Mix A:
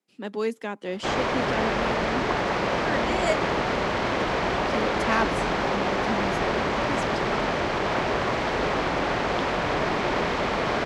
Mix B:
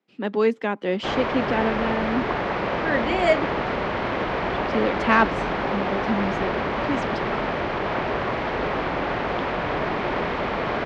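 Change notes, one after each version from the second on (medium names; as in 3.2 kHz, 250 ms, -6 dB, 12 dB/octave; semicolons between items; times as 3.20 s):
speech +7.0 dB; master: add low-pass 3.2 kHz 12 dB/octave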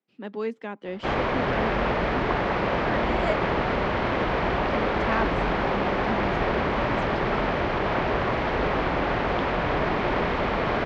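speech -10.0 dB; master: add bass shelf 94 Hz +7.5 dB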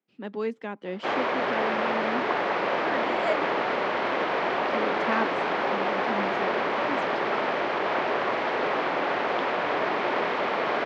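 background: add high-pass 350 Hz 12 dB/octave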